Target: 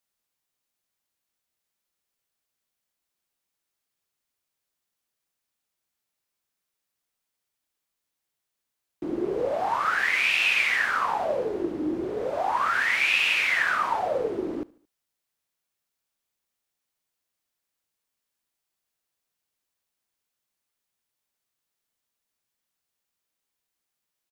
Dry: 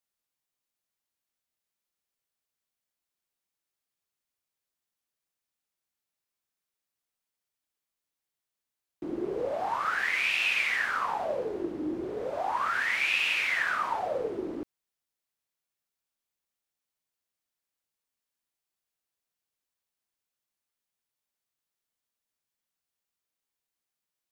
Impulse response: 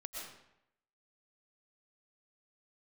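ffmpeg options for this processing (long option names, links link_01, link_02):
-af "aecho=1:1:74|148|222:0.0668|0.0321|0.0154,volume=4.5dB"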